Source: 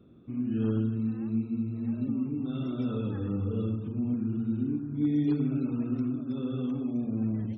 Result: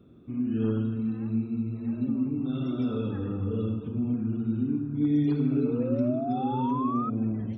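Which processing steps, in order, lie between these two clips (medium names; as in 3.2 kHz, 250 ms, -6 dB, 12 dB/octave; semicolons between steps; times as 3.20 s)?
gated-style reverb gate 450 ms falling, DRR 8 dB; painted sound rise, 5.56–7.10 s, 410–1300 Hz -34 dBFS; trim +1.5 dB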